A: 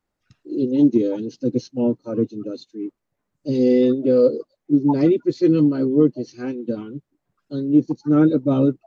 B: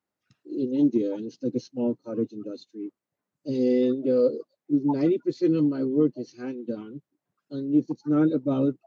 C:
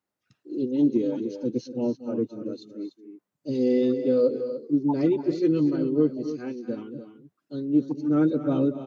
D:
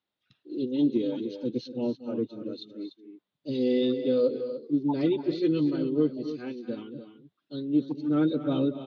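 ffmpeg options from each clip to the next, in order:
-af "highpass=130,volume=0.501"
-af "aecho=1:1:232|244|294:0.178|0.119|0.266"
-af "lowpass=f=3600:t=q:w=4.7,volume=0.708"

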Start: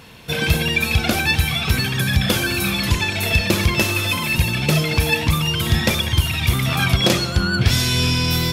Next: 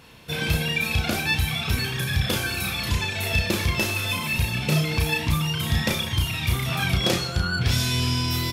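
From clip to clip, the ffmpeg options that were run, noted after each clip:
-filter_complex "[0:a]asplit=2[s0][s1];[s1]adelay=33,volume=0.631[s2];[s0][s2]amix=inputs=2:normalize=0,volume=0.447"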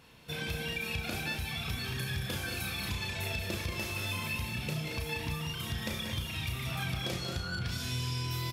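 -filter_complex "[0:a]acompressor=threshold=0.0631:ratio=6,asplit=2[s0][s1];[s1]aecho=0:1:183.7|224.5:0.398|0.355[s2];[s0][s2]amix=inputs=2:normalize=0,volume=0.376"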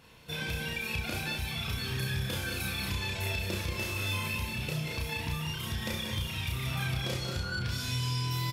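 -filter_complex "[0:a]asplit=2[s0][s1];[s1]adelay=31,volume=0.631[s2];[s0][s2]amix=inputs=2:normalize=0"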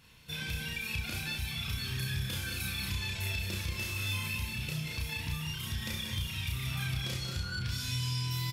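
-af "equalizer=f=560:w=0.57:g=-10.5"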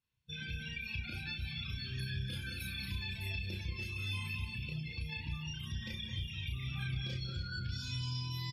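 -af "afftdn=nr=27:nf=-41,aecho=1:1:286:0.237,volume=0.631"

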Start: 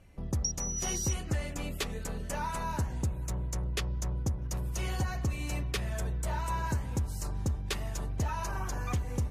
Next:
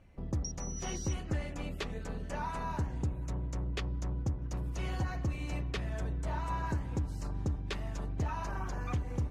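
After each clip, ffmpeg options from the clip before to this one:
-filter_complex "[0:a]tremolo=f=220:d=0.462,acrossover=split=7500[s0][s1];[s1]acompressor=threshold=0.00282:ratio=4:attack=1:release=60[s2];[s0][s2]amix=inputs=2:normalize=0,aemphasis=mode=reproduction:type=50kf"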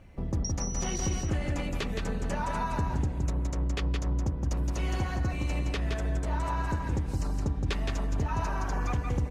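-filter_complex "[0:a]alimiter=level_in=1.88:limit=0.0631:level=0:latency=1:release=178,volume=0.531,asplit=2[s0][s1];[s1]aecho=0:1:168:0.631[s2];[s0][s2]amix=inputs=2:normalize=0,volume=2.37"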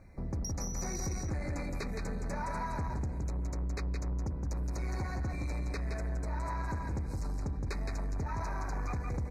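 -af "asoftclip=type=tanh:threshold=0.0447,asuperstop=centerf=3100:order=20:qfactor=2.4,volume=0.75"

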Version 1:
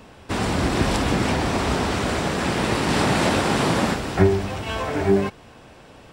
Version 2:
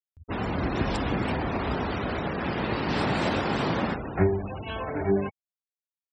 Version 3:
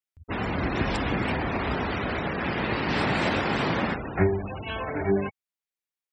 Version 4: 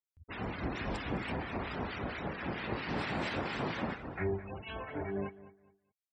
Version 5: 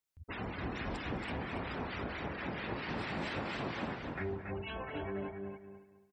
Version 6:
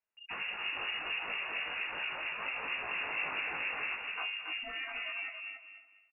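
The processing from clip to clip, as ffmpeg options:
-af "afftfilt=real='re*gte(hypot(re,im),0.0447)':imag='im*gte(hypot(re,im),0.0447)':win_size=1024:overlap=0.75,acompressor=mode=upward:threshold=0.0316:ratio=2.5,volume=0.501"
-af "equalizer=f=2100:w=1.3:g=5"
-filter_complex "[0:a]aecho=1:1:208|416|624:0.15|0.0419|0.0117,acrossover=split=1300[s0][s1];[s0]aeval=exprs='val(0)*(1-0.7/2+0.7/2*cos(2*PI*4.4*n/s))':c=same[s2];[s1]aeval=exprs='val(0)*(1-0.7/2-0.7/2*cos(2*PI*4.4*n/s))':c=same[s3];[s2][s3]amix=inputs=2:normalize=0,volume=0.447"
-filter_complex "[0:a]acompressor=threshold=0.00398:ratio=2,asplit=2[s0][s1];[s1]aecho=0:1:279|558|837:0.473|0.0804|0.0137[s2];[s0][s2]amix=inputs=2:normalize=0,volume=1.78"
-filter_complex "[0:a]asplit=2[s0][s1];[s1]adelay=19,volume=0.708[s2];[s0][s2]amix=inputs=2:normalize=0,lowpass=f=2500:t=q:w=0.5098,lowpass=f=2500:t=q:w=0.6013,lowpass=f=2500:t=q:w=0.9,lowpass=f=2500:t=q:w=2.563,afreqshift=-2900"

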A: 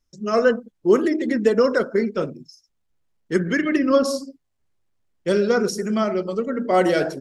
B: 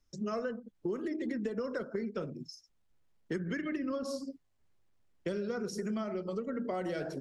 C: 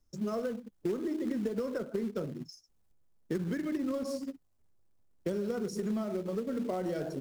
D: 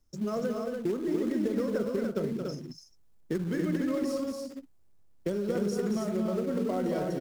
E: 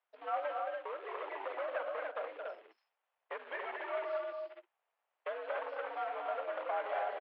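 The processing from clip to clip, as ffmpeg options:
-filter_complex "[0:a]acrossover=split=170[s0][s1];[s1]acompressor=threshold=0.0316:ratio=2[s2];[s0][s2]amix=inputs=2:normalize=0,highshelf=f=8000:g=-6,acompressor=threshold=0.02:ratio=4"
-filter_complex "[0:a]equalizer=f=2500:t=o:w=2.3:g=-10,asplit=2[s0][s1];[s1]acrusher=bits=2:mode=log:mix=0:aa=0.000001,volume=0.398[s2];[s0][s2]amix=inputs=2:normalize=0"
-af "aecho=1:1:224.5|288.6:0.501|0.631,volume=1.26"
-af "aresample=11025,asoftclip=type=hard:threshold=0.0473,aresample=44100,highpass=f=590:t=q:w=0.5412,highpass=f=590:t=q:w=1.307,lowpass=f=3000:t=q:w=0.5176,lowpass=f=3000:t=q:w=0.7071,lowpass=f=3000:t=q:w=1.932,afreqshift=76,volume=1.26"

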